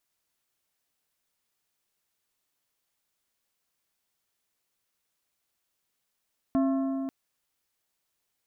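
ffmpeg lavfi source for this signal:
-f lavfi -i "aevalsrc='0.0891*pow(10,-3*t/3.44)*sin(2*PI*269*t)+0.0355*pow(10,-3*t/2.613)*sin(2*PI*672.5*t)+0.0141*pow(10,-3*t/2.27)*sin(2*PI*1076*t)+0.00562*pow(10,-3*t/2.123)*sin(2*PI*1345*t)+0.00224*pow(10,-3*t/1.962)*sin(2*PI*1748.5*t)':d=0.54:s=44100"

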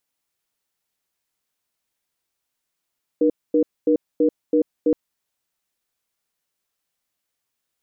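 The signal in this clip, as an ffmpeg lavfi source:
-f lavfi -i "aevalsrc='0.15*(sin(2*PI*303*t)+sin(2*PI*479*t))*clip(min(mod(t,0.33),0.09-mod(t,0.33))/0.005,0,1)':d=1.72:s=44100"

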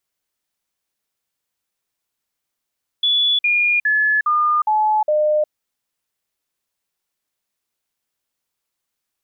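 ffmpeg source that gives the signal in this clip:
-f lavfi -i "aevalsrc='0.211*clip(min(mod(t,0.41),0.36-mod(t,0.41))/0.005,0,1)*sin(2*PI*3430*pow(2,-floor(t/0.41)/2)*mod(t,0.41))':d=2.46:s=44100"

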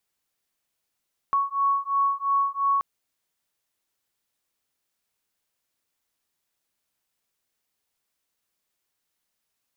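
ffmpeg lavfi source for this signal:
-f lavfi -i "aevalsrc='0.0631*(sin(2*PI*1110*t)+sin(2*PI*1112.9*t))':d=1.48:s=44100"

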